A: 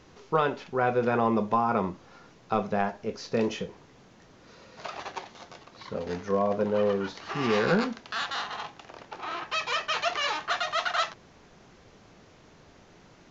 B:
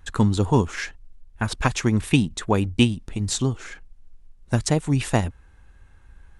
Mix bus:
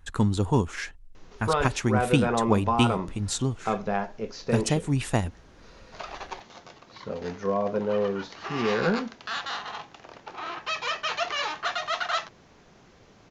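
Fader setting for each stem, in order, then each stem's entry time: -0.5, -4.0 dB; 1.15, 0.00 s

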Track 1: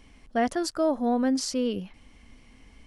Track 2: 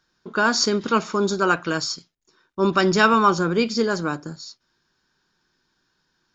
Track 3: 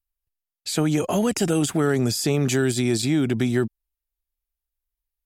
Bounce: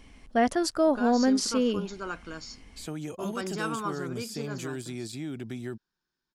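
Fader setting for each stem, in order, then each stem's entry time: +1.5, -16.5, -15.0 dB; 0.00, 0.60, 2.10 s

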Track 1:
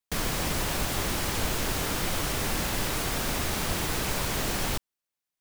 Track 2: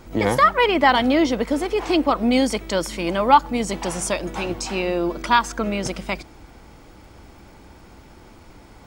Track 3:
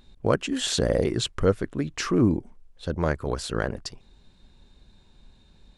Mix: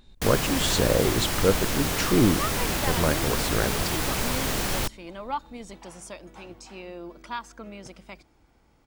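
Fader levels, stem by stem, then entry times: +2.0, -17.0, 0.0 dB; 0.10, 2.00, 0.00 s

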